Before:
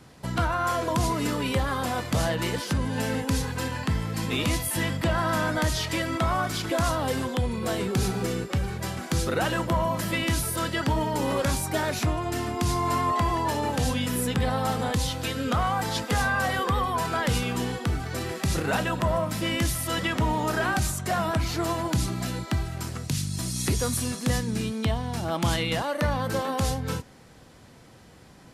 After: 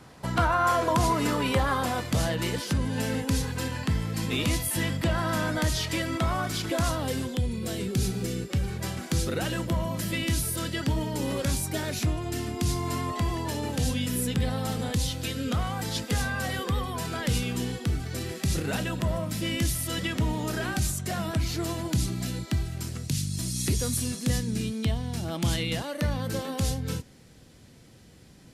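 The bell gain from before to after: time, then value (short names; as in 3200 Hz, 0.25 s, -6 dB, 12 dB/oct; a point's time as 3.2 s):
bell 990 Hz 1.8 oct
1.71 s +3.5 dB
2.12 s -4.5 dB
6.89 s -4.5 dB
7.44 s -14 dB
8.31 s -14 dB
8.86 s -3.5 dB
9.42 s -10 dB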